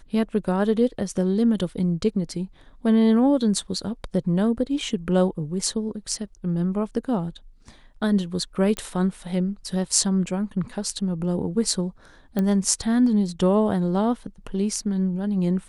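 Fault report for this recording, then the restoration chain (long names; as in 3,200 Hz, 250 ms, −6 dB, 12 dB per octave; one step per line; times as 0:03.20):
0:08.77: click −13 dBFS
0:12.39: click −13 dBFS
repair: click removal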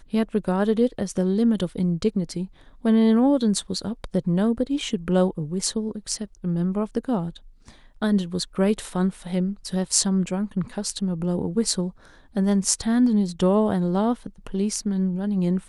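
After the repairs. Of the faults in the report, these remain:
none of them is left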